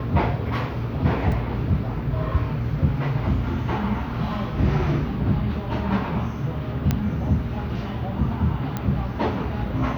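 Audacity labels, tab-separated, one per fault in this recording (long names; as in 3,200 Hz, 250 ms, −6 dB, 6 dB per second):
1.320000	1.320000	drop-out 3 ms
6.910000	6.910000	click −8 dBFS
8.770000	8.770000	click −13 dBFS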